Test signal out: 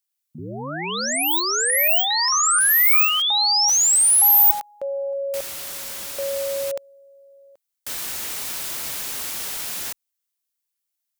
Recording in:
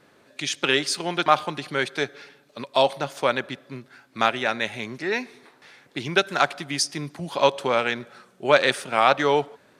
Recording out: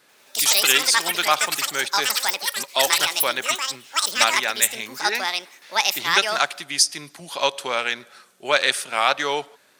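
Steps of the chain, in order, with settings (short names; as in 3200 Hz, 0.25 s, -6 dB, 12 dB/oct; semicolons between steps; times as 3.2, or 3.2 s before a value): echoes that change speed 89 ms, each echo +7 st, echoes 3; tilt +3.5 dB/oct; gain -2 dB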